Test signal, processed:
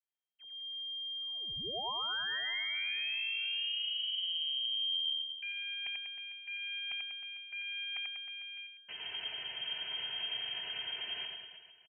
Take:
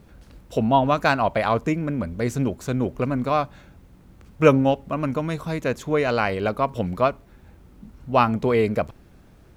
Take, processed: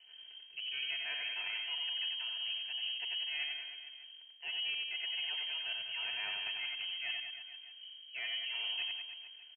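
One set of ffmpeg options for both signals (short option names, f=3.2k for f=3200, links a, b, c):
-af "aeval=exprs='if(lt(val(0),0),0.447*val(0),val(0))':c=same,equalizer=f=100:w=6.9:g=-13.5,bandreject=f=2k:w=5.9,aecho=1:1:3.6:0.52,areverse,acompressor=threshold=-30dB:ratio=12,areverse,asoftclip=type=hard:threshold=-23.5dB,aecho=1:1:90|193.5|312.5|449.4|606.8:0.631|0.398|0.251|0.158|0.1,lowpass=f=2.7k:t=q:w=0.5098,lowpass=f=2.7k:t=q:w=0.6013,lowpass=f=2.7k:t=q:w=0.9,lowpass=f=2.7k:t=q:w=2.563,afreqshift=-3200,volume=-7.5dB"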